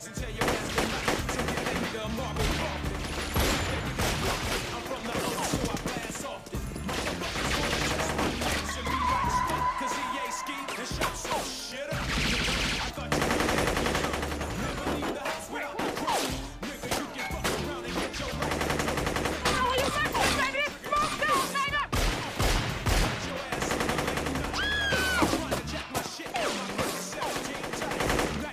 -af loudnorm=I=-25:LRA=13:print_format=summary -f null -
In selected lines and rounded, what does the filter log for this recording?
Input Integrated:    -29.4 LUFS
Input True Peak:     -12.4 dBTP
Input LRA:             4.1 LU
Input Threshold:     -39.4 LUFS